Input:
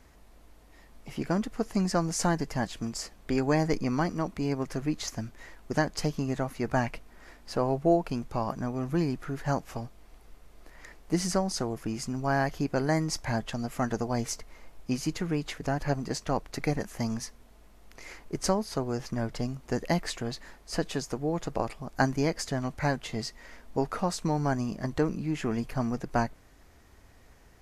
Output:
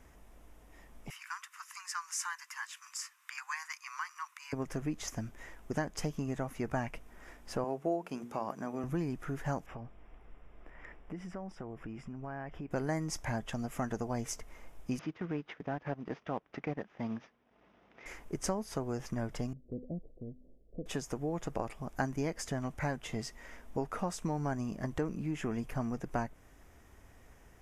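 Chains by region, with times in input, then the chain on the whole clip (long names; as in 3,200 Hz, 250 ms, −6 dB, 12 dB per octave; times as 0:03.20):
0:01.10–0:04.53: Butterworth high-pass 1,000 Hz 72 dB per octave + notch filter 3,300 Hz, Q 14 + one half of a high-frequency compander encoder only
0:07.64–0:08.84: high-pass filter 220 Hz + mains-hum notches 60/120/180/240/300/360/420/480 Hz
0:09.66–0:12.71: downward compressor 4 to 1, threshold −39 dBFS + Savitzky-Golay smoothing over 25 samples
0:14.99–0:18.06: variable-slope delta modulation 32 kbit/s + band-pass filter 150–2,800 Hz + transient designer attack −4 dB, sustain −10 dB
0:19.53–0:20.86: Butterworth low-pass 580 Hz 48 dB per octave + tuned comb filter 250 Hz, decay 0.65 s + dynamic equaliser 450 Hz, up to −4 dB, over −50 dBFS, Q 0.95
whole clip: parametric band 4,300 Hz −12.5 dB 0.3 octaves; downward compressor 2 to 1, threshold −33 dBFS; level −1.5 dB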